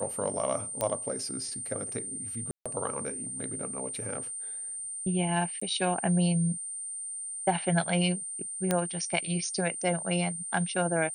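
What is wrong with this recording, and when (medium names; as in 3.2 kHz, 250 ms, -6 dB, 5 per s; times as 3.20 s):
whine 8.9 kHz -35 dBFS
0.81 s: pop -14 dBFS
2.51–2.66 s: dropout 146 ms
5.60–5.62 s: dropout 15 ms
8.71 s: pop -11 dBFS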